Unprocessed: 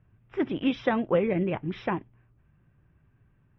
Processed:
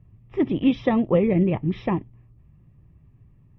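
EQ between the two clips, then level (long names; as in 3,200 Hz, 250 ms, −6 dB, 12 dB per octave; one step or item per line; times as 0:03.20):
Butterworth band-reject 1,500 Hz, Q 4
low-shelf EQ 320 Hz +11.5 dB
parametric band 4,300 Hz +2 dB 0.35 octaves
0.0 dB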